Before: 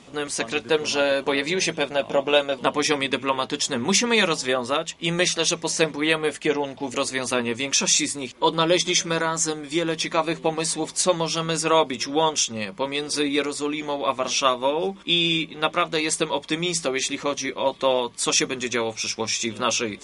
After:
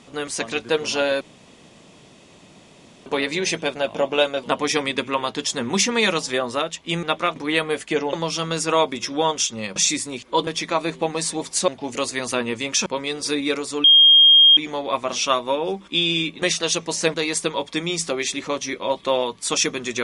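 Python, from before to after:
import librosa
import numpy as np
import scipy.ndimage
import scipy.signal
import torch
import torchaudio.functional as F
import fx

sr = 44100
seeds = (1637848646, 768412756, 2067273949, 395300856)

y = fx.edit(x, sr, fx.insert_room_tone(at_s=1.21, length_s=1.85),
    fx.swap(start_s=5.18, length_s=0.72, other_s=15.57, other_length_s=0.33),
    fx.swap(start_s=6.67, length_s=1.18, other_s=11.11, other_length_s=1.63),
    fx.cut(start_s=8.56, length_s=1.34),
    fx.insert_tone(at_s=13.72, length_s=0.73, hz=3230.0, db=-8.0), tone=tone)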